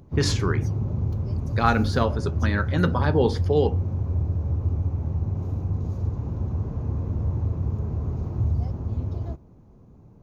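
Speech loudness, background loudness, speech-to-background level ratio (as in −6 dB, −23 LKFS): −25.0 LKFS, −27.5 LKFS, 2.5 dB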